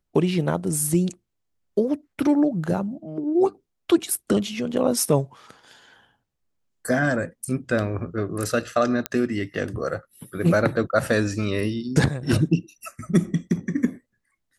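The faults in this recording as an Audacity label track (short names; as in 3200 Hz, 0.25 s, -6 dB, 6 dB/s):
9.060000	9.060000	pop -8 dBFS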